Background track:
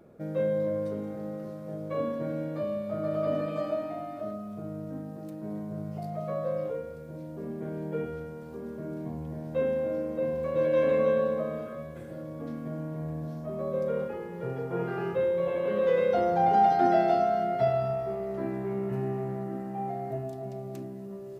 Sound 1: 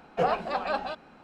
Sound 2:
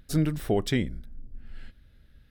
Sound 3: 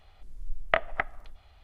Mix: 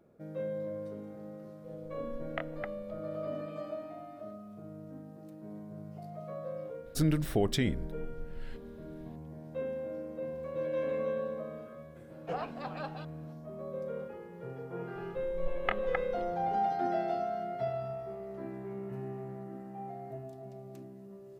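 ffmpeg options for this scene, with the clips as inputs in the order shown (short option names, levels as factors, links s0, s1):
-filter_complex "[3:a]asplit=2[s0][s1];[0:a]volume=0.355[s2];[s0]aeval=exprs='val(0)+0.0251*sin(2*PI*500*n/s)':c=same[s3];[2:a]alimiter=level_in=6.68:limit=0.891:release=50:level=0:latency=1[s4];[s1]aecho=1:1:2.4:0.8[s5];[s3]atrim=end=1.63,asetpts=PTS-STARTPTS,volume=0.2,afade=t=in:d=0.004:c=hsin,afade=t=out:st=1.626:d=0.004:c=hsin,adelay=1640[s6];[s4]atrim=end=2.3,asetpts=PTS-STARTPTS,volume=0.141,afade=t=in:d=0.004:c=hsin,afade=t=out:st=2.296:d=0.004:c=hsin,adelay=6860[s7];[1:a]atrim=end=1.23,asetpts=PTS-STARTPTS,volume=0.266,afade=t=in:d=0.004:c=hsin,afade=t=out:st=1.226:d=0.004:c=hsin,adelay=12100[s8];[s5]atrim=end=1.63,asetpts=PTS-STARTPTS,volume=0.355,afade=t=in:d=0.004:c=hsin,afade=t=out:st=1.626:d=0.004:c=hsin,adelay=14950[s9];[s2][s6][s7][s8][s9]amix=inputs=5:normalize=0"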